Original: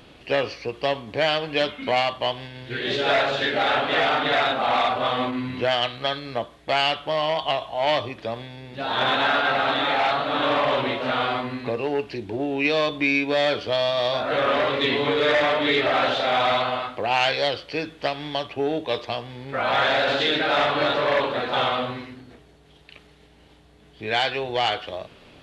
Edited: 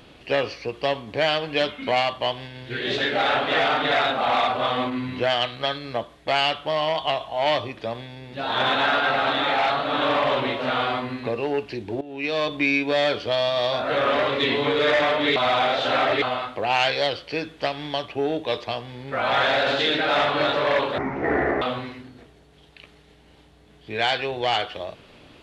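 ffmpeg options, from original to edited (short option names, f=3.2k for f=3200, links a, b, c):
-filter_complex "[0:a]asplit=7[a][b][c][d][e][f][g];[a]atrim=end=2.982[h];[b]atrim=start=3.388:end=12.42,asetpts=PTS-STARTPTS,afade=t=out:st=9.028:d=0.004:c=hsin:silence=0.133352[i];[c]atrim=start=12.42:end=15.772,asetpts=PTS-STARTPTS,afade=t=in:d=0.52:silence=0.133352[j];[d]atrim=start=15.768:end=16.632,asetpts=PTS-STARTPTS,areverse[k];[e]atrim=start=16.628:end=21.394[l];[f]atrim=start=21.39:end=21.74,asetpts=PTS-STARTPTS,asetrate=24255,aresample=44100[m];[g]atrim=start=21.736[n];[i][j]concat=n=2:v=0:a=1[o];[h][o]acrossfade=d=0.004:c1=hsin:c2=hsin[p];[p][k]acrossfade=d=0.004:c1=hsin:c2=hsin[q];[q][l]acrossfade=d=0.004:c1=hsin:c2=hsin[r];[r][m]acrossfade=d=0.004:c1=hsin:c2=hsin[s];[s][n]acrossfade=d=0.004:c1=hsin:c2=hsin"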